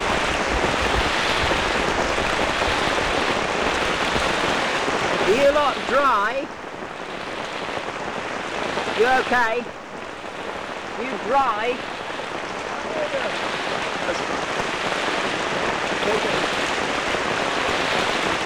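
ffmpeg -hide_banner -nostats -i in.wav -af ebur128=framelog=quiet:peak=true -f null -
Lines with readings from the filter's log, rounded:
Integrated loudness:
  I:         -21.9 LUFS
  Threshold: -32.0 LUFS
Loudness range:
  LRA:         4.9 LU
  Threshold: -42.3 LUFS
  LRA low:   -24.9 LUFS
  LRA high:  -20.0 LUFS
True peak:
  Peak:      -10.0 dBFS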